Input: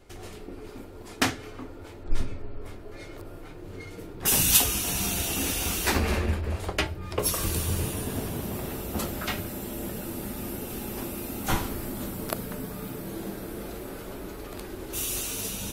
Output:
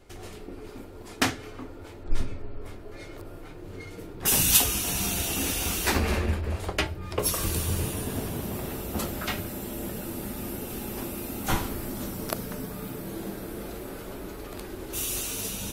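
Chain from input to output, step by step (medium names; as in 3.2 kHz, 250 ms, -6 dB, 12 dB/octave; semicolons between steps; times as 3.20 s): 11.89–12.66 s: peaking EQ 5.7 kHz +5.5 dB 0.37 oct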